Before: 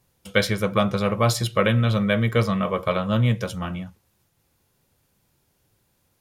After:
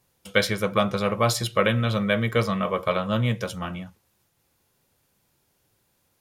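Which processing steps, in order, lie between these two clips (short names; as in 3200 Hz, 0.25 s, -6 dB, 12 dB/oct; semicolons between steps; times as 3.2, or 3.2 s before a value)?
low shelf 210 Hz -6 dB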